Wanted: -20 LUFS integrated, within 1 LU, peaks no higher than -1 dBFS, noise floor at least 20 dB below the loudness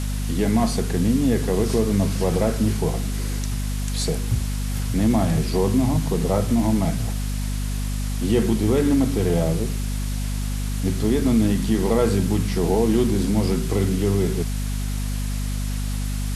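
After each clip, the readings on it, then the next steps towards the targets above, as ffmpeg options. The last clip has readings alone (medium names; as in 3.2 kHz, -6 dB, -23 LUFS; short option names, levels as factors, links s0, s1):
hum 50 Hz; highest harmonic 250 Hz; hum level -22 dBFS; noise floor -25 dBFS; noise floor target -43 dBFS; loudness -22.5 LUFS; peak level -7.5 dBFS; loudness target -20.0 LUFS
-> -af "bandreject=f=50:t=h:w=4,bandreject=f=100:t=h:w=4,bandreject=f=150:t=h:w=4,bandreject=f=200:t=h:w=4,bandreject=f=250:t=h:w=4"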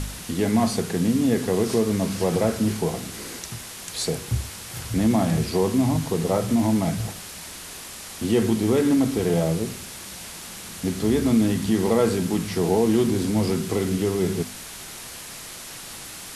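hum not found; noise floor -38 dBFS; noise floor target -43 dBFS
-> -af "afftdn=nr=6:nf=-38"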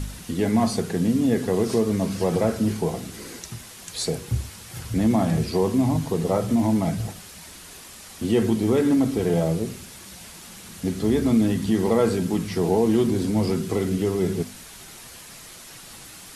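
noise floor -43 dBFS; loudness -23.0 LUFS; peak level -8.5 dBFS; loudness target -20.0 LUFS
-> -af "volume=1.41"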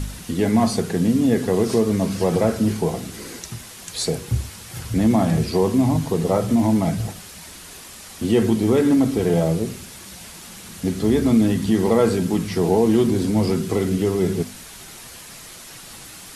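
loudness -20.0 LUFS; peak level -5.5 dBFS; noise floor -40 dBFS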